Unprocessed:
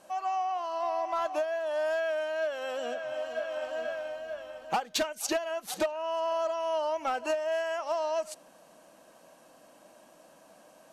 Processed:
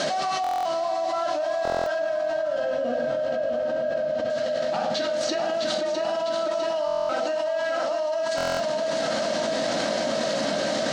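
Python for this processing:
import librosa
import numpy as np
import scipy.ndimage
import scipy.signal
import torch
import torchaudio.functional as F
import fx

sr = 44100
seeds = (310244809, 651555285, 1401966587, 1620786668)

y = fx.delta_mod(x, sr, bps=64000, step_db=-37.5)
y = fx.tilt_eq(y, sr, slope=-4.0, at=(1.98, 4.3))
y = fx.rider(y, sr, range_db=5, speed_s=0.5)
y = fx.cabinet(y, sr, low_hz=150.0, low_slope=12, high_hz=6300.0, hz=(190.0, 360.0, 550.0, 980.0, 2500.0, 4200.0), db=(6, -4, 4, -8, -6, 6))
y = fx.echo_feedback(y, sr, ms=653, feedback_pct=55, wet_db=-6)
y = fx.room_shoebox(y, sr, seeds[0], volume_m3=880.0, walls='furnished', distance_m=2.8)
y = fx.buffer_glitch(y, sr, at_s=(0.42, 1.63, 6.86, 8.36), block=1024, repeats=9)
y = fx.env_flatten(y, sr, amount_pct=100)
y = F.gain(torch.from_numpy(y), -8.0).numpy()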